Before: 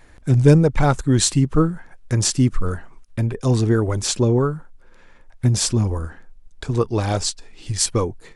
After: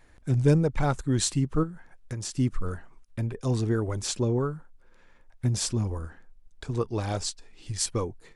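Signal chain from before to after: 1.63–2.37 compressor 6:1, threshold -23 dBFS, peak gain reduction 8 dB; gain -8.5 dB

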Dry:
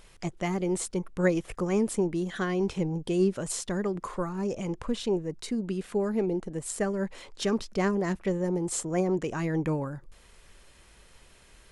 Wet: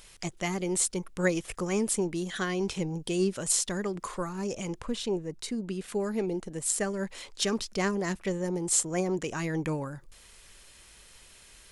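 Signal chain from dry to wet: high shelf 2200 Hz +11.5 dB, from 4.81 s +6 dB, from 5.88 s +11 dB; short-mantissa float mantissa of 8-bit; gain -3 dB

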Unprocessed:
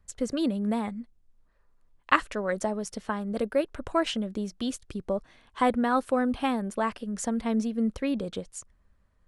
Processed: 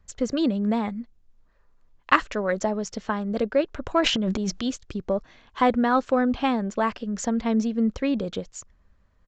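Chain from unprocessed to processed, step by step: 4–4.66 transient shaper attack -3 dB, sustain +12 dB; in parallel at -11 dB: soft clip -19 dBFS, distortion -14 dB; on the sum: downsampling 16000 Hz; gain +2 dB

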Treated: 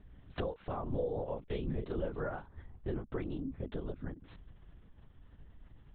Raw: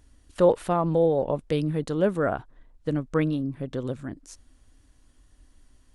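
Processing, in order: compressor 8:1, threshold -36 dBFS, peak gain reduction 21.5 dB; 0.83–3.03 doubler 32 ms -4 dB; LPC vocoder at 8 kHz whisper; mismatched tape noise reduction decoder only; gain +1 dB

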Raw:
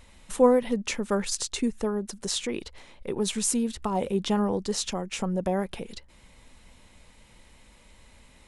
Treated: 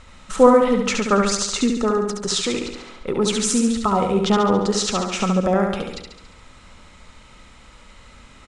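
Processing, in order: LPF 8000 Hz 24 dB/oct; bell 1300 Hz +14 dB 0.22 oct; feedback echo 70 ms, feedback 56%, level -4.5 dB; gain +6.5 dB

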